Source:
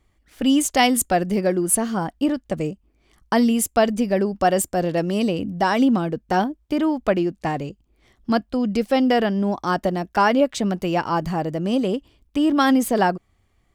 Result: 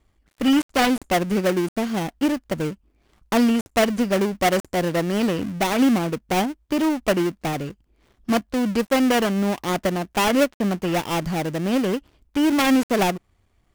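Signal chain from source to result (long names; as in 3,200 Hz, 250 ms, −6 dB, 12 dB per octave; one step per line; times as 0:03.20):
gap after every zero crossing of 0.29 ms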